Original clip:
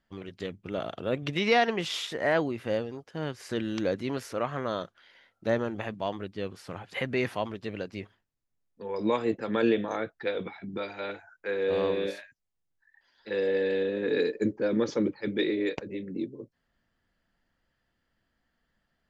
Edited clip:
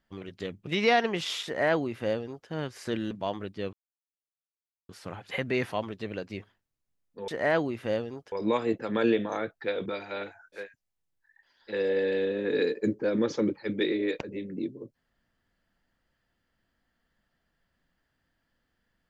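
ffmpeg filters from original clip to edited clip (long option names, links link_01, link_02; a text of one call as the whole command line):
ffmpeg -i in.wav -filter_complex "[0:a]asplit=8[link_01][link_02][link_03][link_04][link_05][link_06][link_07][link_08];[link_01]atrim=end=0.672[link_09];[link_02]atrim=start=1.308:end=3.752[link_10];[link_03]atrim=start=5.898:end=6.52,asetpts=PTS-STARTPTS,afade=type=out:start_time=0.618:duration=0.004:curve=hsin,apad=pad_dur=1.16[link_11];[link_04]atrim=start=6.52:end=8.912,asetpts=PTS-STARTPTS,afade=type=in:duration=0.004:curve=hsin[link_12];[link_05]atrim=start=2.088:end=3.132[link_13];[link_06]atrim=start=8.908:end=10.452[link_14];[link_07]atrim=start=10.738:end=11.56[link_15];[link_08]atrim=start=12.1[link_16];[link_09][link_10]acrossfade=duration=0.004:curve1=hsin:curve2=hsin[link_17];[link_11][link_12]concat=n=2:v=0:a=1[link_18];[link_17][link_18]acrossfade=duration=0.004:curve1=hsin:curve2=hsin[link_19];[link_19][link_13]acrossfade=duration=0.004:curve1=hsin:curve2=hsin[link_20];[link_20][link_14]acrossfade=duration=0.004:curve1=hsin:curve2=hsin[link_21];[link_21][link_15]acrossfade=duration=0.004:curve1=hsin:curve2=hsin[link_22];[link_22][link_16]acrossfade=duration=0.16:curve1=tri:curve2=tri" out.wav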